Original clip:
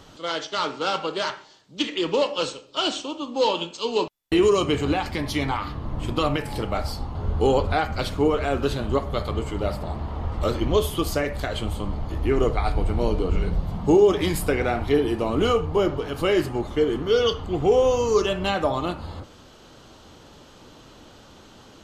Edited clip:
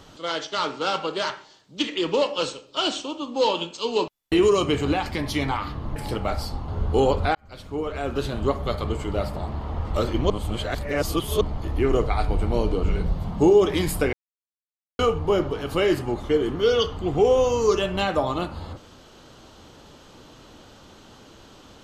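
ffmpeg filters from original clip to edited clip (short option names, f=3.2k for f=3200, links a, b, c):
-filter_complex "[0:a]asplit=7[a][b][c][d][e][f][g];[a]atrim=end=5.962[h];[b]atrim=start=6.428:end=7.82,asetpts=PTS-STARTPTS,afade=t=out:st=1.388:d=0.004:c=hsin[i];[c]atrim=start=7.82:end=10.772,asetpts=PTS-STARTPTS,afade=t=in:d=1.13[j];[d]atrim=start=10.768:end=11.882,asetpts=PTS-STARTPTS,areverse[k];[e]atrim=start=11.878:end=14.6,asetpts=PTS-STARTPTS,afade=t=out:st=2.718:d=0.004:c=hsin[l];[f]atrim=start=14.6:end=15.46,asetpts=PTS-STARTPTS,volume=0[m];[g]atrim=start=15.46,asetpts=PTS-STARTPTS,afade=t=in:d=0.004:c=hsin[n];[i][j]concat=n=2:v=0:a=1[o];[h][o]acrossfade=d=0.004:c1=hsin:c2=hsin[p];[p][k]acrossfade=d=0.004:c1=hsin:c2=hsin[q];[l][m][n]concat=n=3:v=0:a=1[r];[q][r]acrossfade=d=0.004:c1=hsin:c2=hsin"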